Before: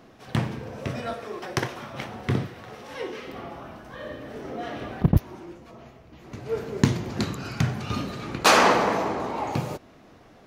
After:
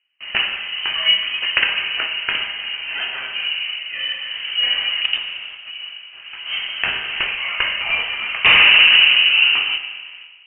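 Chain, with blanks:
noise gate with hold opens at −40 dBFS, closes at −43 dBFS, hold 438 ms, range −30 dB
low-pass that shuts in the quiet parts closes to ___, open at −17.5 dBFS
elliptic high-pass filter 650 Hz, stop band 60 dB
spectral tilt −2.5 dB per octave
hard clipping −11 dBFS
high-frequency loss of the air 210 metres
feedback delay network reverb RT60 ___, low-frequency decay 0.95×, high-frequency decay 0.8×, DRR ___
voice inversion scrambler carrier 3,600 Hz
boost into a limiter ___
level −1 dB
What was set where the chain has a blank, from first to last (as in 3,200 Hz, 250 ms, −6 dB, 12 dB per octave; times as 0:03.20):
2,200 Hz, 1.7 s, 4.5 dB, +18 dB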